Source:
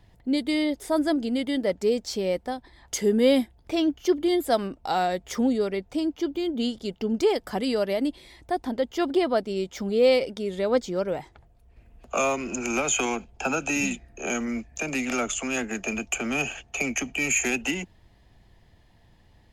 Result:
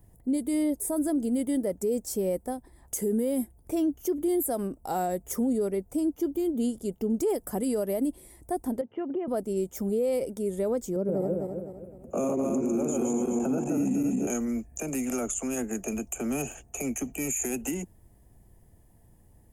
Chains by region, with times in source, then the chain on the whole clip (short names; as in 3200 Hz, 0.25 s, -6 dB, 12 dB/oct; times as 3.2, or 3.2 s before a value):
8.81–9.28 Chebyshev band-pass 100–2900 Hz, order 5 + compressor 4:1, threshold -28 dBFS
10.96–14.27 regenerating reverse delay 0.128 s, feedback 62%, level -1 dB + HPF 150 Hz + tilt shelf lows +10 dB, about 640 Hz
whole clip: EQ curve 420 Hz 0 dB, 4100 Hz -18 dB, 9400 Hz +13 dB; limiter -20 dBFS